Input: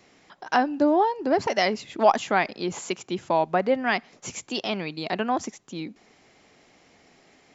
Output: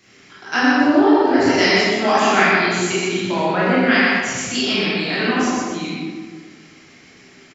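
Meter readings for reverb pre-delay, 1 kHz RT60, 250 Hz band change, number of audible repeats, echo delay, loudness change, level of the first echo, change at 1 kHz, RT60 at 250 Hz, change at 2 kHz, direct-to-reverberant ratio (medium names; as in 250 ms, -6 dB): 19 ms, 1.5 s, +11.0 dB, 1, 123 ms, +8.0 dB, -2.5 dB, +4.5 dB, 1.7 s, +13.0 dB, -10.5 dB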